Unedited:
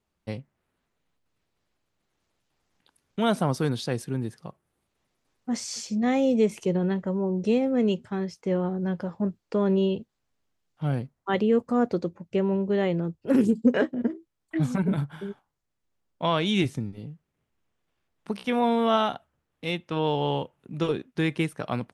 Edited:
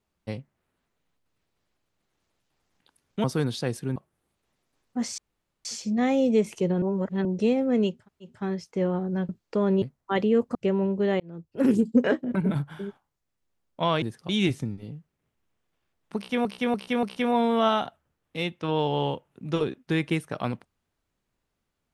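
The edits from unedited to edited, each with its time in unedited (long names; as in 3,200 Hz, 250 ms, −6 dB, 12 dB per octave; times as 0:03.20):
0:03.24–0:03.49: remove
0:04.21–0:04.48: move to 0:16.44
0:05.70: splice in room tone 0.47 s
0:06.87–0:07.30: reverse
0:08.02: splice in room tone 0.35 s, crossfade 0.24 s
0:08.99–0:09.28: remove
0:09.81–0:11.00: remove
0:11.73–0:12.25: remove
0:12.90–0:13.40: fade in
0:14.05–0:14.77: remove
0:18.31–0:18.60: repeat, 4 plays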